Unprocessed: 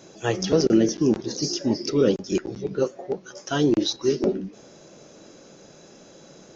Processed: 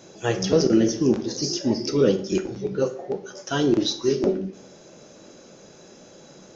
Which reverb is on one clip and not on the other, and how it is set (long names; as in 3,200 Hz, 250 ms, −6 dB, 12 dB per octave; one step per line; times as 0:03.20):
dense smooth reverb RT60 0.55 s, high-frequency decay 0.8×, DRR 7 dB